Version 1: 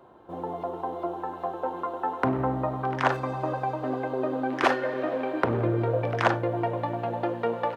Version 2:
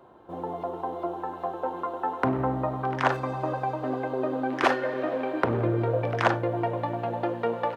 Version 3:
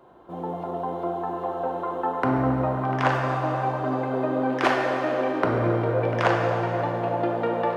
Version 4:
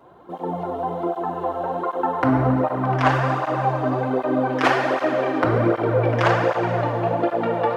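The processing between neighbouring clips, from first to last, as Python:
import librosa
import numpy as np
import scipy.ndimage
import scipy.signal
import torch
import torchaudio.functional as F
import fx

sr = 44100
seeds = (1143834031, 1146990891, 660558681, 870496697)

y1 = x
y2 = fx.echo_wet_bandpass(y1, sr, ms=270, feedback_pct=85, hz=620.0, wet_db=-11.5)
y2 = fx.rev_plate(y2, sr, seeds[0], rt60_s=2.5, hf_ratio=0.95, predelay_ms=0, drr_db=1.0)
y3 = fx.flanger_cancel(y2, sr, hz=1.3, depth_ms=5.8)
y3 = y3 * 10.0 ** (6.5 / 20.0)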